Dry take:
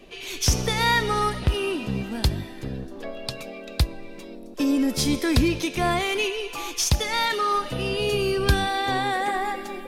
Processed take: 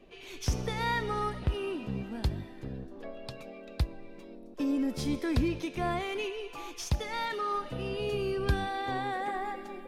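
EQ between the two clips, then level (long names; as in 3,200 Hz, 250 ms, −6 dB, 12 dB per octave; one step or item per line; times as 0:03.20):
high-shelf EQ 2,900 Hz −10.5 dB
−7.5 dB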